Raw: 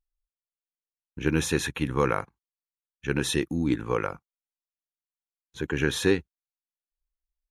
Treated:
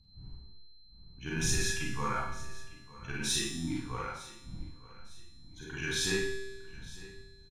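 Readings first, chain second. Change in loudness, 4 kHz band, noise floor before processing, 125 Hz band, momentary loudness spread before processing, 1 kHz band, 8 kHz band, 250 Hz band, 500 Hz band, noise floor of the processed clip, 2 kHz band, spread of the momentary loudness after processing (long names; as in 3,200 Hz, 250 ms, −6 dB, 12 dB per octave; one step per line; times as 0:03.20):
−6.5 dB, −0.5 dB, below −85 dBFS, −7.5 dB, 10 LU, −5.0 dB, +2.0 dB, −10.5 dB, −11.5 dB, −55 dBFS, −4.0 dB, 20 LU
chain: spectral dynamics exaggerated over time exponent 1.5
wind on the microphone 81 Hz −39 dBFS
parametric band 5,200 Hz +9 dB 0.78 octaves
in parallel at −9 dB: hard clipping −25.5 dBFS, distortion −7 dB
on the sum: tuned comb filter 130 Hz, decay 1.3 s, harmonics all, mix 80%
steady tone 4,100 Hz −68 dBFS
octave-band graphic EQ 500/1,000/8,000 Hz −11/+4/+5 dB
repeating echo 906 ms, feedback 38%, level −19 dB
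four-comb reverb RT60 0.5 s, combs from 33 ms, DRR −4.5 dB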